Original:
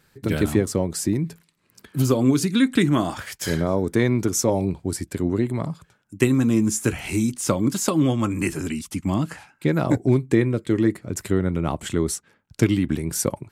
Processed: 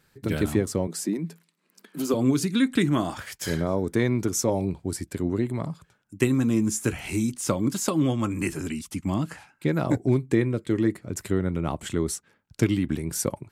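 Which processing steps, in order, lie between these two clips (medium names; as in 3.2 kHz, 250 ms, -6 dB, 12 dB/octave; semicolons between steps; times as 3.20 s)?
0.87–2.14 s: elliptic high-pass 170 Hz; trim -3.5 dB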